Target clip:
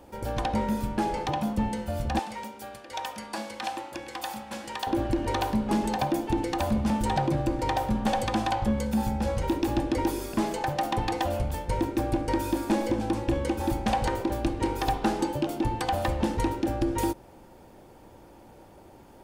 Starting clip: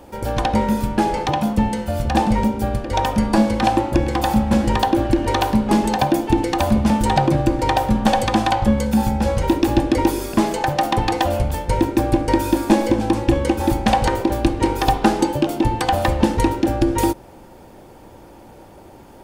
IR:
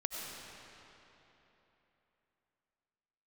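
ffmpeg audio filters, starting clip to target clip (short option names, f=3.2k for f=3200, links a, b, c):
-filter_complex "[0:a]asettb=1/sr,asplit=3[a][b][c];[a]atrim=end=2.194[d];[b]atrim=start=2.19:end=4.87,asetpts=PTS-STARTPTS,afade=t=in:d=0.004:c=qsin,afade=t=out:st=2.676:d=0.004:c=qsin,highpass=f=1.5k:p=1[e];[c]atrim=start=4.866[f];[d][e]acrossfade=d=0.004:c1=hsin:c2=qsin[g];[g][f]acrossfade=d=0.004:c1=qsin:c2=hsin,asoftclip=type=tanh:threshold=-8dB,volume=-8dB"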